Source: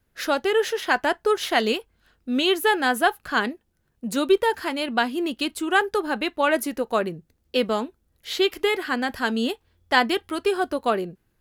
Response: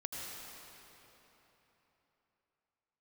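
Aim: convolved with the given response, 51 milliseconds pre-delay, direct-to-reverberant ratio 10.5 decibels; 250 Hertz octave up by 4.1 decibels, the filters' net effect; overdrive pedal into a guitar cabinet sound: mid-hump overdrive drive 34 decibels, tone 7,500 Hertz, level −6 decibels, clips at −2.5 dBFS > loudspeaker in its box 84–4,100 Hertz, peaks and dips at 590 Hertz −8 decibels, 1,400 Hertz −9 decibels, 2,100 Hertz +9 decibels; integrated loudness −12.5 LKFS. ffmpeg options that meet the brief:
-filter_complex "[0:a]equalizer=frequency=250:width_type=o:gain=5.5,asplit=2[link_01][link_02];[1:a]atrim=start_sample=2205,adelay=51[link_03];[link_02][link_03]afir=irnorm=-1:irlink=0,volume=-11.5dB[link_04];[link_01][link_04]amix=inputs=2:normalize=0,asplit=2[link_05][link_06];[link_06]highpass=frequency=720:poles=1,volume=34dB,asoftclip=type=tanh:threshold=-2.5dB[link_07];[link_05][link_07]amix=inputs=2:normalize=0,lowpass=frequency=7500:poles=1,volume=-6dB,highpass=84,equalizer=frequency=590:width_type=q:width=4:gain=-8,equalizer=frequency=1400:width_type=q:width=4:gain=-9,equalizer=frequency=2100:width_type=q:width=4:gain=9,lowpass=frequency=4100:width=0.5412,lowpass=frequency=4100:width=1.3066,volume=-2dB"

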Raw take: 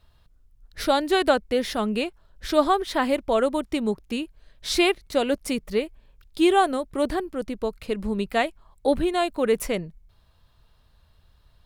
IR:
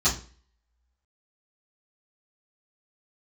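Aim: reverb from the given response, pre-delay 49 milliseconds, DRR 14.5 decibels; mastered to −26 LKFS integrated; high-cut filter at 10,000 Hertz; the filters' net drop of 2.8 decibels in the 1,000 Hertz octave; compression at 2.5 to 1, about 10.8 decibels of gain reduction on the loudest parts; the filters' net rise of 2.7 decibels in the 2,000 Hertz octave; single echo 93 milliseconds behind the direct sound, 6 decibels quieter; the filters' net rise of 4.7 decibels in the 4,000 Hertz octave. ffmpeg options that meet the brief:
-filter_complex "[0:a]lowpass=10000,equalizer=frequency=1000:width_type=o:gain=-5,equalizer=frequency=2000:width_type=o:gain=3.5,equalizer=frequency=4000:width_type=o:gain=5,acompressor=threshold=-31dB:ratio=2.5,aecho=1:1:93:0.501,asplit=2[link_01][link_02];[1:a]atrim=start_sample=2205,adelay=49[link_03];[link_02][link_03]afir=irnorm=-1:irlink=0,volume=-27.5dB[link_04];[link_01][link_04]amix=inputs=2:normalize=0,volume=5.5dB"

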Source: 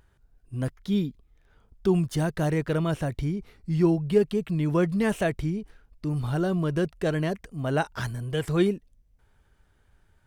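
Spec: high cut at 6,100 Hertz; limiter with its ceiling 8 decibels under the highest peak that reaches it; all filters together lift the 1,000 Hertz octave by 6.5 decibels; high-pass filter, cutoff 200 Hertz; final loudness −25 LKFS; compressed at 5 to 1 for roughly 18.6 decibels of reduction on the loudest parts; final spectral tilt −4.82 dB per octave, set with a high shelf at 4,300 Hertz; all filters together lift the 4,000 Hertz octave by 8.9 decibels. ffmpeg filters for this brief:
ffmpeg -i in.wav -af "highpass=200,lowpass=6100,equalizer=frequency=1000:width_type=o:gain=8,equalizer=frequency=4000:width_type=o:gain=8.5,highshelf=frequency=4300:gain=6.5,acompressor=threshold=-37dB:ratio=5,volume=17dB,alimiter=limit=-13.5dB:level=0:latency=1" out.wav

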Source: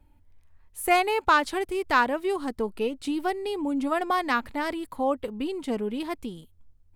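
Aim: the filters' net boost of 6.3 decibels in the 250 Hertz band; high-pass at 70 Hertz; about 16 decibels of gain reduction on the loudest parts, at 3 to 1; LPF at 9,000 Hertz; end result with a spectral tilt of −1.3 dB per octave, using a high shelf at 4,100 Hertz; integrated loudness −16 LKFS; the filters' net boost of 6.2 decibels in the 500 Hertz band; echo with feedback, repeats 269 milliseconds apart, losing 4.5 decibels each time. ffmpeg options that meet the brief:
ffmpeg -i in.wav -af "highpass=70,lowpass=9000,equalizer=frequency=250:width_type=o:gain=5.5,equalizer=frequency=500:width_type=o:gain=6.5,highshelf=frequency=4100:gain=-9,acompressor=threshold=-37dB:ratio=3,aecho=1:1:269|538|807|1076|1345|1614|1883|2152|2421:0.596|0.357|0.214|0.129|0.0772|0.0463|0.0278|0.0167|0.01,volume=18.5dB" out.wav

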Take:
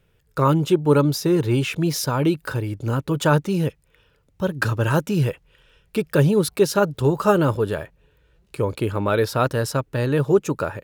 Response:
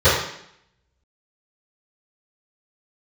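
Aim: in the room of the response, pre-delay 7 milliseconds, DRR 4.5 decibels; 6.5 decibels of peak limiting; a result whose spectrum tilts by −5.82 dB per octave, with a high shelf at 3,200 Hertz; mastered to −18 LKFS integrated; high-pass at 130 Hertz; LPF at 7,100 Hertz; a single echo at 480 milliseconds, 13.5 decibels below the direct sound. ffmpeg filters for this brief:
-filter_complex "[0:a]highpass=130,lowpass=7100,highshelf=frequency=3200:gain=6.5,alimiter=limit=-9.5dB:level=0:latency=1,aecho=1:1:480:0.211,asplit=2[link_01][link_02];[1:a]atrim=start_sample=2205,adelay=7[link_03];[link_02][link_03]afir=irnorm=-1:irlink=0,volume=-29dB[link_04];[link_01][link_04]amix=inputs=2:normalize=0,volume=2.5dB"

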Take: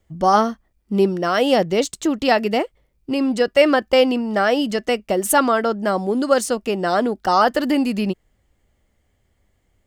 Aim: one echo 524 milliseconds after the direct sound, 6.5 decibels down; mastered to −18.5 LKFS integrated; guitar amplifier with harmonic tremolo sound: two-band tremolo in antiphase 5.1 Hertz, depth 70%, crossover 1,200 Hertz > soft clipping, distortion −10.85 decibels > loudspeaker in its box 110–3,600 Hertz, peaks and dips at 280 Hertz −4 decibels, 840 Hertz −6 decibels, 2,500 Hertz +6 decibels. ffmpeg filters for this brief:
ffmpeg -i in.wav -filter_complex "[0:a]aecho=1:1:524:0.473,acrossover=split=1200[link_01][link_02];[link_01]aeval=exprs='val(0)*(1-0.7/2+0.7/2*cos(2*PI*5.1*n/s))':channel_layout=same[link_03];[link_02]aeval=exprs='val(0)*(1-0.7/2-0.7/2*cos(2*PI*5.1*n/s))':channel_layout=same[link_04];[link_03][link_04]amix=inputs=2:normalize=0,asoftclip=threshold=-17.5dB,highpass=110,equalizer=frequency=280:width_type=q:width=4:gain=-4,equalizer=frequency=840:width_type=q:width=4:gain=-6,equalizer=frequency=2500:width_type=q:width=4:gain=6,lowpass=frequency=3600:width=0.5412,lowpass=frequency=3600:width=1.3066,volume=7.5dB" out.wav

